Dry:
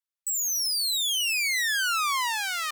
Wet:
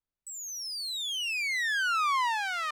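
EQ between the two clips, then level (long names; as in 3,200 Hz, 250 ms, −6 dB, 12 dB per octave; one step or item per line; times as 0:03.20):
spectral tilt −4 dB per octave
high-shelf EQ 10,000 Hz −7 dB
+1.5 dB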